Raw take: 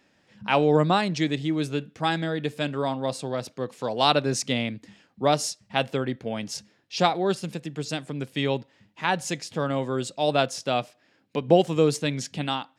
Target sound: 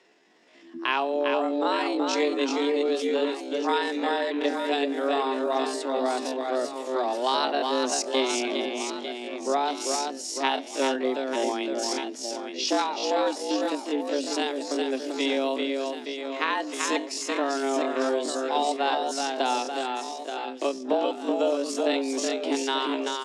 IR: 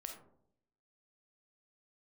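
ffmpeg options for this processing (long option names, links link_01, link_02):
-filter_complex "[0:a]lowpass=9300,acompressor=threshold=-25dB:ratio=8,afreqshift=130,asplit=2[link_01][link_02];[link_02]aecho=0:1:210|483|837.9|1299|1899:0.631|0.398|0.251|0.158|0.1[link_03];[link_01][link_03]amix=inputs=2:normalize=0,atempo=0.55,volume=3dB"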